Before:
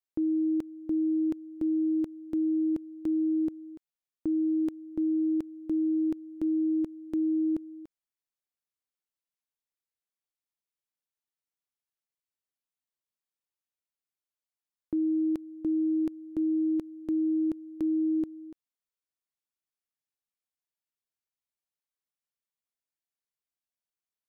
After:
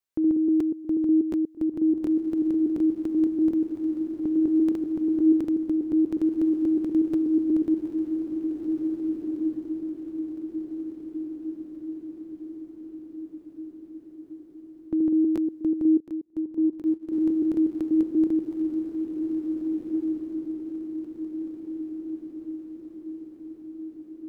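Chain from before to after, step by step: reverse delay 0.121 s, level -1.5 dB; diffused feedback echo 1.863 s, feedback 56%, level -5 dB; 16–17.12 upward expander 2.5:1, over -35 dBFS; gain +3.5 dB

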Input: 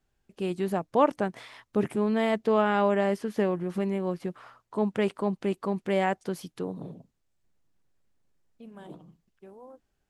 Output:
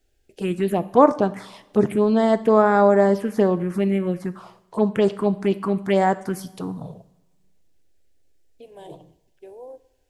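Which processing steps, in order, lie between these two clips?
envelope phaser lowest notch 180 Hz, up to 2900 Hz, full sweep at -20.5 dBFS; two-slope reverb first 0.68 s, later 1.8 s, from -17 dB, DRR 12.5 dB; gain +9 dB

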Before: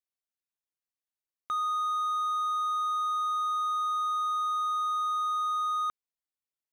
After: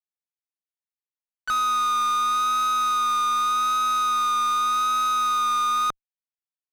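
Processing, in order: added harmonics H 4 -13 dB, 7 -17 dB, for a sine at -24.5 dBFS; harmoniser +3 st -17 dB; overdrive pedal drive 32 dB, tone 3700 Hz, clips at -21.5 dBFS; vibrato 0.85 Hz 25 cents; gain +3.5 dB

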